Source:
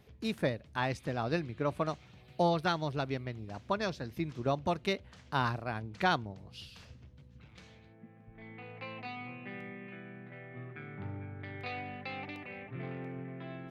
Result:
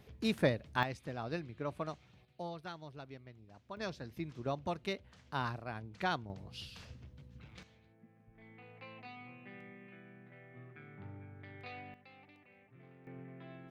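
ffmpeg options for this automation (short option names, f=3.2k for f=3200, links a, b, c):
-af "asetnsamples=n=441:p=0,asendcmd='0.83 volume volume -7dB;2.25 volume volume -15dB;3.77 volume volume -6dB;6.3 volume volume 1dB;7.63 volume volume -8dB;11.94 volume volume -18dB;13.07 volume volume -7.5dB',volume=1.5dB"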